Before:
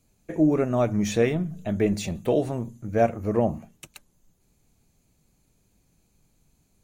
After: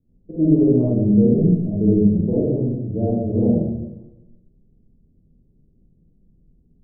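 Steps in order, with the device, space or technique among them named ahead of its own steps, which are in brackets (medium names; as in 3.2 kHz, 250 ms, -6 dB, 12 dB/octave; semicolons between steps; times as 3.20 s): next room (low-pass 420 Hz 24 dB/octave; reverberation RT60 0.95 s, pre-delay 39 ms, DRR -7.5 dB)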